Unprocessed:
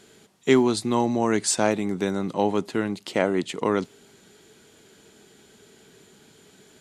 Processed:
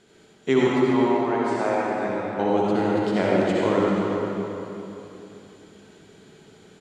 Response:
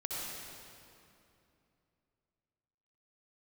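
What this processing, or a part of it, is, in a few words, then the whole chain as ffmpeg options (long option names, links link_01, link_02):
swimming-pool hall: -filter_complex "[0:a]lowpass=9200,asettb=1/sr,asplit=3[link_01][link_02][link_03];[link_01]atrim=end=0.674[link_04];[link_02]atrim=start=0.67:end=2.39,asetpts=PTS-STARTPTS,afade=type=in:duration=0.004:curve=qsin,afade=type=out:start_time=1.716:duration=0.004:curve=qsin,acrossover=split=520 2600:gain=0.251 1 0.112[link_05][link_06][link_07];[link_05][link_06][link_07]amix=inputs=3:normalize=0[link_08];[link_03]atrim=start=2.386[link_09];[link_04][link_08]acrossfade=duration=0.004:curve1=hsin:curve2=qsin[link_10];[link_10][link_09]acrossfade=duration=0.004:curve1=qsin:curve2=hsin,asplit=2[link_11][link_12];[link_12]adelay=392,lowpass=frequency=3900:poles=1,volume=-8dB,asplit=2[link_13][link_14];[link_14]adelay=392,lowpass=frequency=3900:poles=1,volume=0.34,asplit=2[link_15][link_16];[link_16]adelay=392,lowpass=frequency=3900:poles=1,volume=0.34,asplit=2[link_17][link_18];[link_18]adelay=392,lowpass=frequency=3900:poles=1,volume=0.34[link_19];[link_11][link_13][link_15][link_17][link_19]amix=inputs=5:normalize=0[link_20];[1:a]atrim=start_sample=2205[link_21];[link_20][link_21]afir=irnorm=-1:irlink=0,highshelf=frequency=3900:gain=-6.5"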